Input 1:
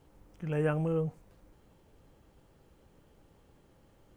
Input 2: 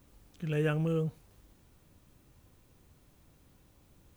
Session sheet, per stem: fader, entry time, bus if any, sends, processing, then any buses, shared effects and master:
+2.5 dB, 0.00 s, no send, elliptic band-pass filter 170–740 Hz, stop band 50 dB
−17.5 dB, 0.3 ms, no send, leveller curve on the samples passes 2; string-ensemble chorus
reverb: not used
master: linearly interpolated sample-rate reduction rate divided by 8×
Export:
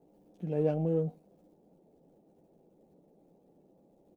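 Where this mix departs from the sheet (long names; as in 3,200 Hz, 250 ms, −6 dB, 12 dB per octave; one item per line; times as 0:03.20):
stem 2: polarity flipped
master: missing linearly interpolated sample-rate reduction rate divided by 8×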